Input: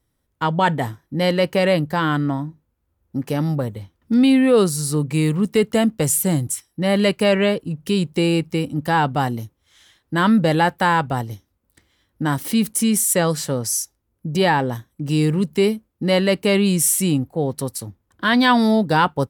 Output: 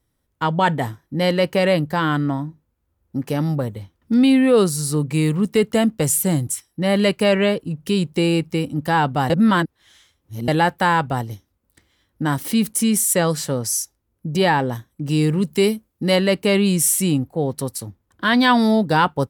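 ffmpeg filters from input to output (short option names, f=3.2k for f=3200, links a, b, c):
-filter_complex "[0:a]asettb=1/sr,asplit=3[a][b][c];[a]atrim=end=15.444[d];[b]atrim=start=15.44:end=16.16,asetpts=PTS-STARTPTS,afade=t=in:d=0.004:c=qsin,afade=t=out:st=0.716:d=0.004:c=qsin,highshelf=f=4.3k:g=7[e];[c]atrim=start=16.156[f];[d][e]acrossfade=d=0.004:c1=hsin:c2=qsin[g];[g][f]acrossfade=d=0.004:c1=qsin:c2=hsin,asplit=3[h][i][j];[h]atrim=end=9.302[k];[i]atrim=start=9.298:end=10.482,asetpts=PTS-STARTPTS,areverse[l];[j]atrim=start=10.478[m];[k][l]acrossfade=d=0.004:c1=hsin:c2=hsin[n];[n][m]acrossfade=d=0.004:c1=hsin:c2=hsin"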